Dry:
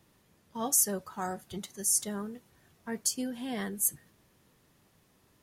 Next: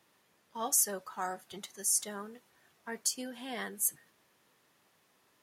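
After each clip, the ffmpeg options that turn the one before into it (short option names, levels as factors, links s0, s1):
-af "highpass=f=860:p=1,highshelf=f=3800:g=-6,volume=1.41"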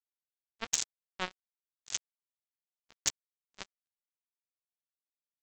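-af "aresample=16000,acrusher=bits=3:mix=0:aa=0.5,aresample=44100,volume=11.9,asoftclip=hard,volume=0.0841,volume=2.37"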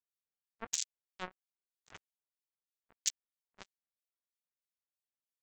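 -filter_complex "[0:a]acrossover=split=2000[s0][s1];[s0]aeval=exprs='val(0)*(1-1/2+1/2*cos(2*PI*3.1*n/s))':c=same[s2];[s1]aeval=exprs='val(0)*(1-1/2-1/2*cos(2*PI*3.1*n/s))':c=same[s3];[s2][s3]amix=inputs=2:normalize=0,volume=0.794"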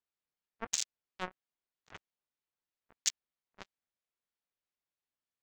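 -af "adynamicsmooth=sensitivity=6:basefreq=4700,volume=1.5"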